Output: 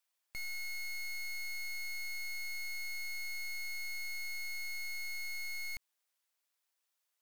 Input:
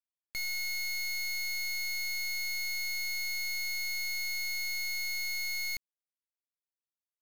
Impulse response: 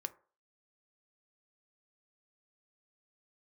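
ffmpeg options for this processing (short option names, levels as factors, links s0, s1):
-af "highpass=610,alimiter=level_in=4.22:limit=0.0631:level=0:latency=1,volume=0.237,aeval=exprs='(tanh(631*val(0)+0.65)-tanh(0.65))/631':c=same,volume=5.96"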